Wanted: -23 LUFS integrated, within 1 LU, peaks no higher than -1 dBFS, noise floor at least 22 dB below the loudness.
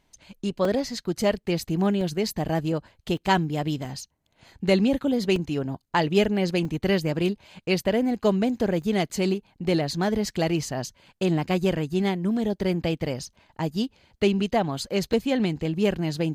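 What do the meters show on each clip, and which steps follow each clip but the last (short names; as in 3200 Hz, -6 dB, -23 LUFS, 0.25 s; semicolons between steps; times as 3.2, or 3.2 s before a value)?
dropouts 8; longest dropout 2.4 ms; loudness -25.5 LUFS; peak -8.0 dBFS; loudness target -23.0 LUFS
-> interpolate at 0.65/2.01/3.17/3.85/5.36/6.65/8.82/15.13, 2.4 ms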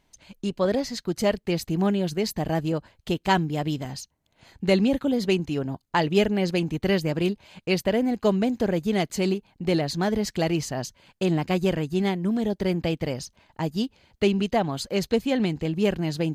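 dropouts 0; loudness -25.5 LUFS; peak -8.0 dBFS; loudness target -23.0 LUFS
-> gain +2.5 dB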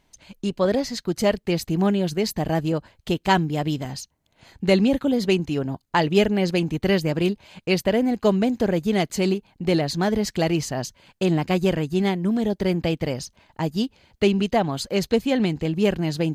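loudness -23.0 LUFS; peak -5.5 dBFS; noise floor -68 dBFS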